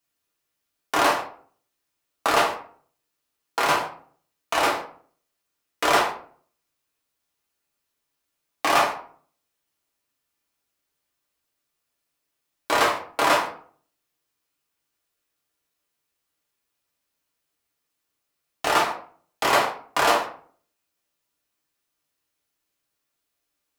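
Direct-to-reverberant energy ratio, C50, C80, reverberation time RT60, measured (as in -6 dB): -2.5 dB, 8.0 dB, 12.5 dB, 0.50 s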